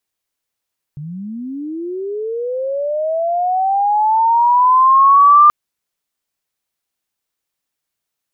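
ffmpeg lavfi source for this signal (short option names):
-f lavfi -i "aevalsrc='pow(10,(-25.5+21.5*t/4.53)/20)*sin(2*PI*(140*t+1060*t*t/(2*4.53)))':d=4.53:s=44100"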